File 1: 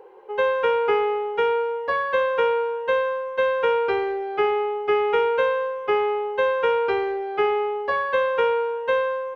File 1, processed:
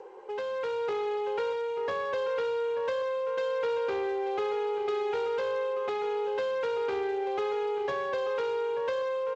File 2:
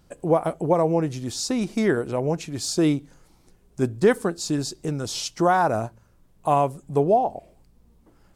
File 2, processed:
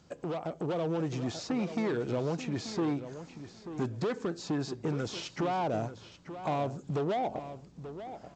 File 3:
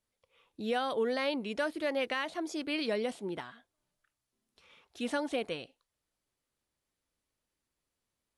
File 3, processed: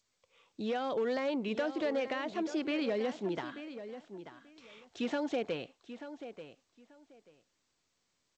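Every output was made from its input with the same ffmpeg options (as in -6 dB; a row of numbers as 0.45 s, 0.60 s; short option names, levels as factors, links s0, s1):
-filter_complex "[0:a]asoftclip=type=tanh:threshold=0.1,acrossover=split=660|2700[s0][s1][s2];[s0]acompressor=threshold=0.0178:ratio=4[s3];[s1]acompressor=threshold=0.00708:ratio=4[s4];[s2]acompressor=threshold=0.00178:ratio=4[s5];[s3][s4][s5]amix=inputs=3:normalize=0,volume=33.5,asoftclip=hard,volume=0.0299,highpass=96,asplit=2[s6][s7];[s7]adelay=886,lowpass=f=3900:p=1,volume=0.266,asplit=2[s8][s9];[s9]adelay=886,lowpass=f=3900:p=1,volume=0.19[s10];[s8][s10]amix=inputs=2:normalize=0[s11];[s6][s11]amix=inputs=2:normalize=0,dynaudnorm=f=260:g=5:m=1.58" -ar 16000 -c:a g722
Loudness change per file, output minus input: -8.0 LU, -10.5 LU, -1.5 LU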